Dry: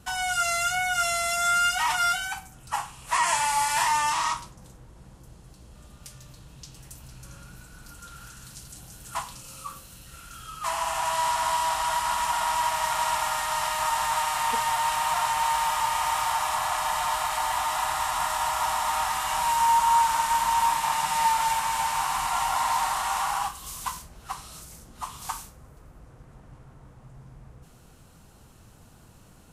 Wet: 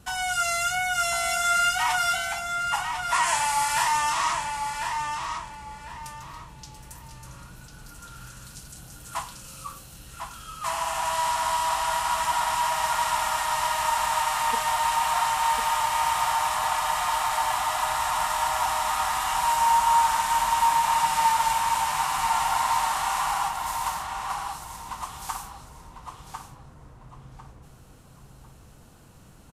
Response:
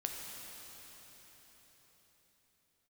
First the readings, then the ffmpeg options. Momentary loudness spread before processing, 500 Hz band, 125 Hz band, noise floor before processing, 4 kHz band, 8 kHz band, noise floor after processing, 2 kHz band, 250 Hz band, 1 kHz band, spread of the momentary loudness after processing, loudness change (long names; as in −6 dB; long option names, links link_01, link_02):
17 LU, +1.0 dB, +1.0 dB, −52 dBFS, +1.0 dB, +0.5 dB, −50 dBFS, +1.0 dB, +1.0 dB, +1.0 dB, 20 LU, +0.5 dB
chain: -filter_complex "[0:a]asplit=2[link_01][link_02];[link_02]adelay=1049,lowpass=frequency=4700:poles=1,volume=-5dB,asplit=2[link_03][link_04];[link_04]adelay=1049,lowpass=frequency=4700:poles=1,volume=0.29,asplit=2[link_05][link_06];[link_06]adelay=1049,lowpass=frequency=4700:poles=1,volume=0.29,asplit=2[link_07][link_08];[link_08]adelay=1049,lowpass=frequency=4700:poles=1,volume=0.29[link_09];[link_01][link_03][link_05][link_07][link_09]amix=inputs=5:normalize=0"